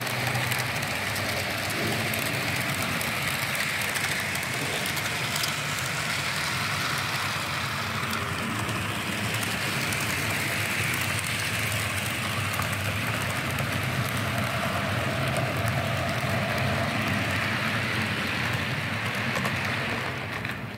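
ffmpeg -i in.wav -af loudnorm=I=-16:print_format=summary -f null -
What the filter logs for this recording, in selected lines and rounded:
Input Integrated:    -26.8 LUFS
Input True Peak:      -9.8 dBTP
Input LRA:             1.4 LU
Input Threshold:     -36.8 LUFS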